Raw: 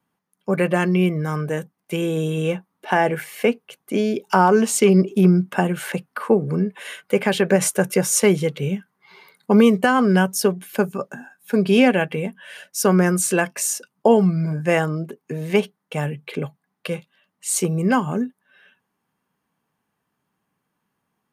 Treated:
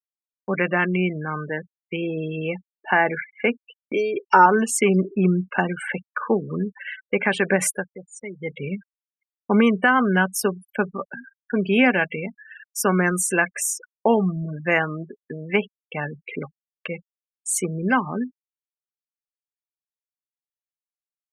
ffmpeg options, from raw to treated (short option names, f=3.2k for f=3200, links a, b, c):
-filter_complex "[0:a]asettb=1/sr,asplit=3[a][b][c];[a]atrim=end=3.934[d];[b]atrim=start=3.93:end=4.46,asetpts=PTS-STARTPTS,afade=t=in:d=0.004:c=qsin,afade=t=out:st=0.526:d=0.004:c=qsin,aecho=1:1:2.2:0.85,atrim=end_sample=23373[e];[c]atrim=start=4.456[f];[d][e]acrossfade=d=0.004:c1=hsin:c2=qsin[g];[g][f]acrossfade=d=0.004:c1=qsin:c2=hsin,asplit=3[h][i][j];[h]atrim=end=7.86,asetpts=PTS-STARTPTS,afade=t=out:st=7.71:d=0.15:silence=0.158489[k];[i]atrim=start=7.86:end=8.37,asetpts=PTS-STARTPTS,volume=-16dB[l];[j]atrim=start=8.37,asetpts=PTS-STARTPTS,afade=t=in:d=0.15:silence=0.158489[m];[k][l][m]concat=n=3:v=0:a=1,afftfilt=real='re*gte(hypot(re,im),0.0398)':imag='im*gte(hypot(re,im),0.0398)':win_size=1024:overlap=0.75,agate=range=-33dB:threshold=-39dB:ratio=3:detection=peak,equalizer=f=125:t=o:w=1:g=-10,equalizer=f=500:t=o:w=1:g=-5,equalizer=f=2k:t=o:w=1:g=7,equalizer=f=4k:t=o:w=1:g=-9"